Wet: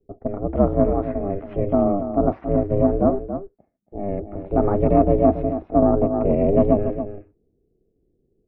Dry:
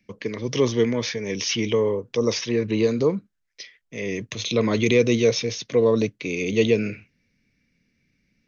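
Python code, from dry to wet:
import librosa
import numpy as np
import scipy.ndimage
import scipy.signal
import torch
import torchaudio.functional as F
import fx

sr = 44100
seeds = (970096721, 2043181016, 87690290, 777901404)

y = fx.diode_clip(x, sr, knee_db=-11.0)
y = fx.env_lowpass(y, sr, base_hz=310.0, full_db=-19.0)
y = scipy.signal.sosfilt(scipy.signal.butter(4, 1100.0, 'lowpass', fs=sr, output='sos'), y)
y = y * np.sin(2.0 * np.pi * 200.0 * np.arange(len(y)) / sr)
y = y + 10.0 ** (-10.0 / 20.0) * np.pad(y, (int(279 * sr / 1000.0), 0))[:len(y)]
y = fx.band_squash(y, sr, depth_pct=100, at=(5.82, 6.59))
y = y * librosa.db_to_amplitude(6.5)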